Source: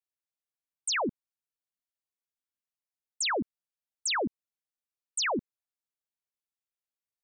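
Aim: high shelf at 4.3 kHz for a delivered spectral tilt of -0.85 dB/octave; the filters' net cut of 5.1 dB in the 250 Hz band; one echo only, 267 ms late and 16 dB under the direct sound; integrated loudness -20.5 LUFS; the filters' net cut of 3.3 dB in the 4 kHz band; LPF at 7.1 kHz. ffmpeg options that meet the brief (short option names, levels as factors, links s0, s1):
-af "lowpass=7100,equalizer=f=250:t=o:g=-6.5,equalizer=f=4000:t=o:g=-9,highshelf=f=4300:g=8.5,aecho=1:1:267:0.158,volume=3.98"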